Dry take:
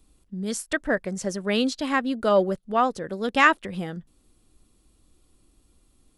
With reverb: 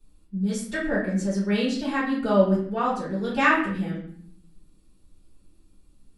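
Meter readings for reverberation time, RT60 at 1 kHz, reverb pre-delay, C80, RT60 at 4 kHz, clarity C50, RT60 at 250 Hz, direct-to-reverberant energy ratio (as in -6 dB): 0.60 s, 0.55 s, 4 ms, 7.5 dB, 0.45 s, 3.5 dB, 1.0 s, -10.5 dB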